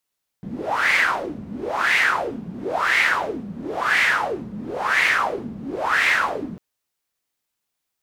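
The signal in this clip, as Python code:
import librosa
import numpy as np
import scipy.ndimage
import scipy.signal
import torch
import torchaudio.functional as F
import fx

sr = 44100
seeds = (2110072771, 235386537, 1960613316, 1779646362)

y = fx.wind(sr, seeds[0], length_s=6.15, low_hz=190.0, high_hz=2100.0, q=6.1, gusts=6, swing_db=15.5)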